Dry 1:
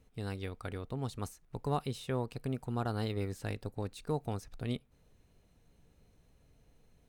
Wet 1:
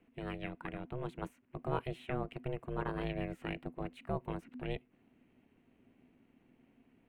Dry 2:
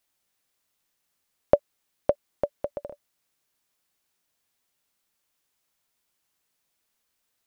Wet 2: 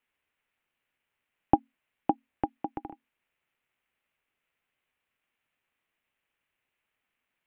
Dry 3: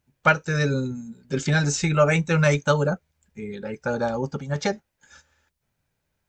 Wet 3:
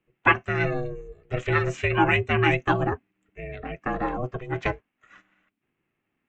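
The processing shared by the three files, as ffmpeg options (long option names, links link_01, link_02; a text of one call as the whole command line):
ffmpeg -i in.wav -af "highshelf=frequency=3500:width_type=q:width=3:gain=-12,afreqshift=-20,aeval=exprs='val(0)*sin(2*PI*250*n/s)':channel_layout=same" out.wav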